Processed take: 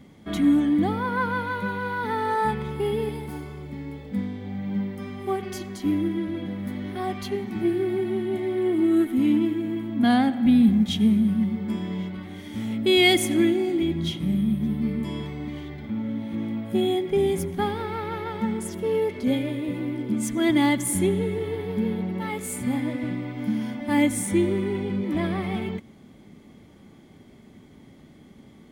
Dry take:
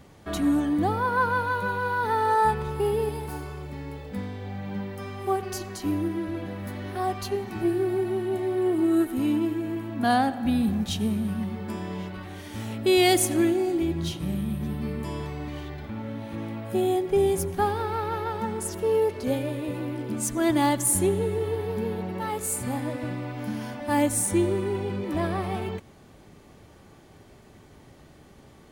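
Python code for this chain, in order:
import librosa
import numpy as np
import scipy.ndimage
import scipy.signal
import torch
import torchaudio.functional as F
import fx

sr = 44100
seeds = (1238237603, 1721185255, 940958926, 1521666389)

y = fx.dynamic_eq(x, sr, hz=2300.0, q=0.85, threshold_db=-43.0, ratio=4.0, max_db=5)
y = fx.small_body(y, sr, hz=(220.0, 2100.0, 3300.0), ring_ms=25, db=13)
y = y * 10.0 ** (-5.0 / 20.0)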